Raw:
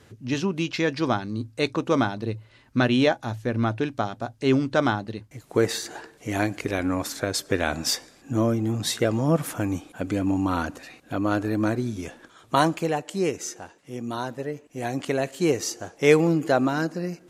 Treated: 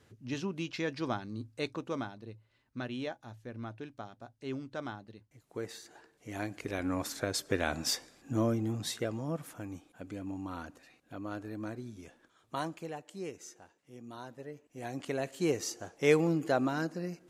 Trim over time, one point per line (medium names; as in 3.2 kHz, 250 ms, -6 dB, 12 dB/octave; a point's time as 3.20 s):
1.58 s -10.5 dB
2.25 s -18 dB
5.93 s -18 dB
6.99 s -7 dB
8.57 s -7 dB
9.44 s -16 dB
14.12 s -16 dB
15.39 s -8 dB